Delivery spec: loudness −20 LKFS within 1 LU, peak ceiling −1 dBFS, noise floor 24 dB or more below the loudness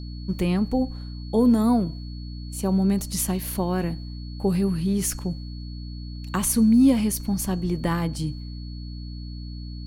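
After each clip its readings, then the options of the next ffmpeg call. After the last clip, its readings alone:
mains hum 60 Hz; hum harmonics up to 300 Hz; level of the hum −32 dBFS; interfering tone 4,400 Hz; level of the tone −47 dBFS; integrated loudness −23.5 LKFS; sample peak −9.5 dBFS; target loudness −20.0 LKFS
→ -af "bandreject=frequency=60:width_type=h:width=4,bandreject=frequency=120:width_type=h:width=4,bandreject=frequency=180:width_type=h:width=4,bandreject=frequency=240:width_type=h:width=4,bandreject=frequency=300:width_type=h:width=4"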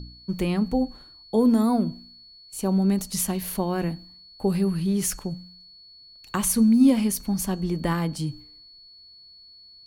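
mains hum none found; interfering tone 4,400 Hz; level of the tone −47 dBFS
→ -af "bandreject=frequency=4400:width=30"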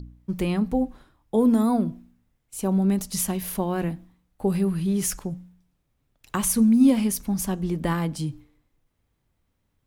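interfering tone none found; integrated loudness −24.0 LKFS; sample peak −8.5 dBFS; target loudness −20.0 LKFS
→ -af "volume=4dB"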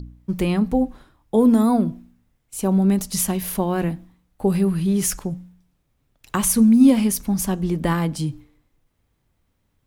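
integrated loudness −20.0 LKFS; sample peak −4.5 dBFS; background noise floor −70 dBFS

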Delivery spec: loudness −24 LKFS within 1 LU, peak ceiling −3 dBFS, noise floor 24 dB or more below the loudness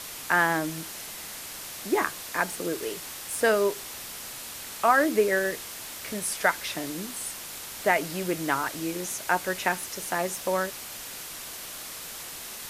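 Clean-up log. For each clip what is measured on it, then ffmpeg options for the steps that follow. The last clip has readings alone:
background noise floor −40 dBFS; target noise floor −53 dBFS; integrated loudness −28.5 LKFS; sample peak −8.0 dBFS; target loudness −24.0 LKFS
→ -af "afftdn=noise_reduction=13:noise_floor=-40"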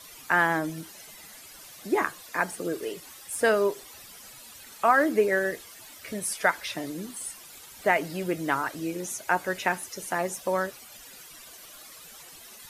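background noise floor −48 dBFS; target noise floor −52 dBFS
→ -af "afftdn=noise_reduction=6:noise_floor=-48"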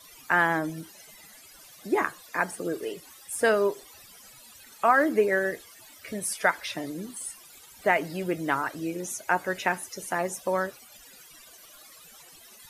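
background noise floor −51 dBFS; target noise floor −52 dBFS
→ -af "afftdn=noise_reduction=6:noise_floor=-51"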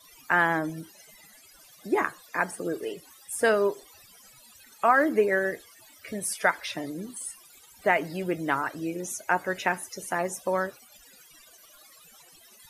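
background noise floor −55 dBFS; integrated loudness −27.5 LKFS; sample peak −8.0 dBFS; target loudness −24.0 LKFS
→ -af "volume=3.5dB"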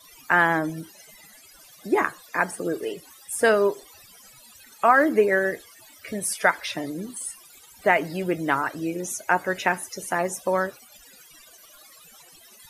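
integrated loudness −24.0 LKFS; sample peak −4.5 dBFS; background noise floor −51 dBFS

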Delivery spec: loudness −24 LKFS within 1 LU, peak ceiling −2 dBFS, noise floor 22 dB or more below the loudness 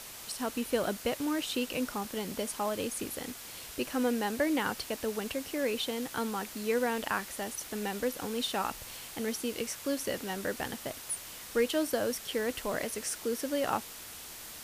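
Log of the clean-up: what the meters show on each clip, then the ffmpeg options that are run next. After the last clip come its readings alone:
background noise floor −46 dBFS; target noise floor −56 dBFS; integrated loudness −33.5 LKFS; sample peak −16.0 dBFS; target loudness −24.0 LKFS
→ -af "afftdn=noise_reduction=10:noise_floor=-46"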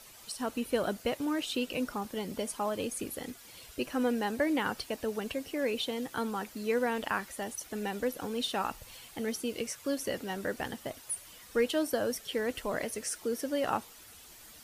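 background noise floor −53 dBFS; target noise floor −56 dBFS
→ -af "afftdn=noise_reduction=6:noise_floor=-53"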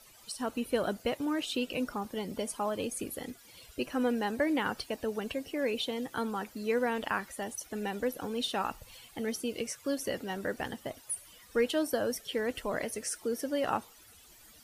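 background noise floor −57 dBFS; integrated loudness −34.0 LKFS; sample peak −16.5 dBFS; target loudness −24.0 LKFS
→ -af "volume=10dB"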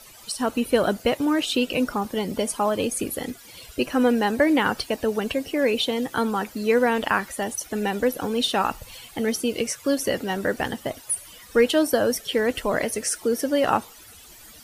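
integrated loudness −24.0 LKFS; sample peak −6.5 dBFS; background noise floor −47 dBFS

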